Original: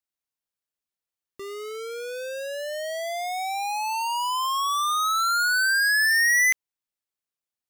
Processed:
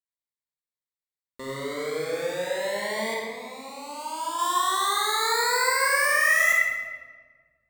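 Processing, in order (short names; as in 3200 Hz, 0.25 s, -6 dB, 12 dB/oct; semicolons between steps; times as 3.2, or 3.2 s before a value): cycle switcher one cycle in 3, muted; dynamic EQ 9400 Hz, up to +5 dB, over -43 dBFS, Q 1.2; sample leveller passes 2; ripple EQ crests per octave 1, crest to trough 11 dB; 3.14–4.39 expander -13 dBFS; reverb RT60 1.5 s, pre-delay 45 ms, DRR -2 dB; gain -8.5 dB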